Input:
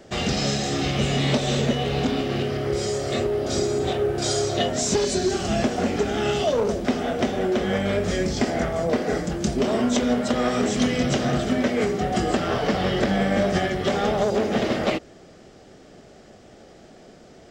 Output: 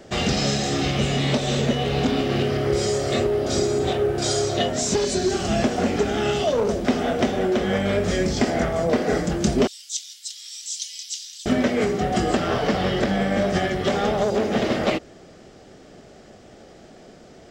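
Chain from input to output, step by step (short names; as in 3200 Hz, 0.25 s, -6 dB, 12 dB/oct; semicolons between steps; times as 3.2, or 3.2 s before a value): 9.67–11.46 inverse Chebyshev high-pass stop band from 730 Hz, stop band 80 dB; vocal rider within 3 dB 0.5 s; gain +1.5 dB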